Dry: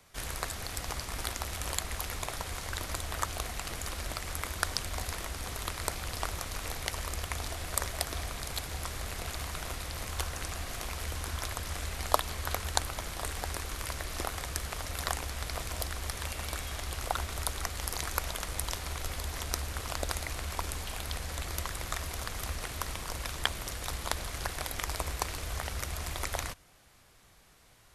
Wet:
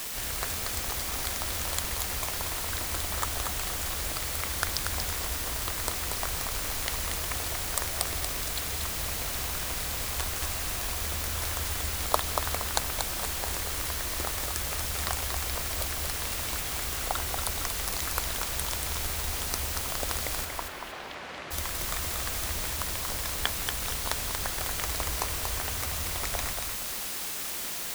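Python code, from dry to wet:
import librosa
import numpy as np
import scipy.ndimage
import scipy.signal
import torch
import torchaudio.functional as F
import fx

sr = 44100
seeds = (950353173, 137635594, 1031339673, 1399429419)

y = fx.quant_dither(x, sr, seeds[0], bits=6, dither='triangular')
y = fx.bandpass_edges(y, sr, low_hz=fx.line((20.44, 320.0), (21.5, 200.0)), high_hz=2500.0, at=(20.44, 21.5), fade=0.02)
y = fx.echo_feedback(y, sr, ms=234, feedback_pct=33, wet_db=-5.0)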